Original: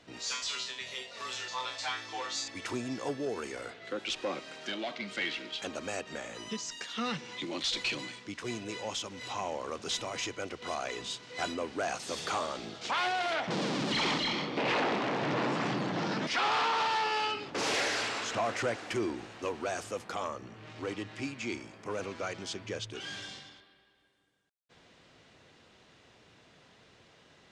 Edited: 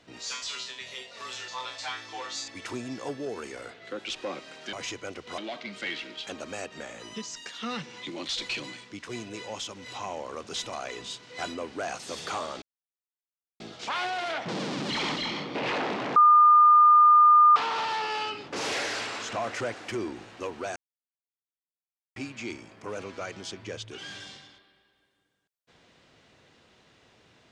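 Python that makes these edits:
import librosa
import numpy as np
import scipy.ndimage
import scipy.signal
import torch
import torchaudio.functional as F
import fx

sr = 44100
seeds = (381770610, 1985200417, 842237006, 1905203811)

y = fx.edit(x, sr, fx.move(start_s=10.08, length_s=0.65, to_s=4.73),
    fx.insert_silence(at_s=12.62, length_s=0.98),
    fx.bleep(start_s=15.18, length_s=1.4, hz=1210.0, db=-13.0),
    fx.silence(start_s=19.78, length_s=1.4), tone=tone)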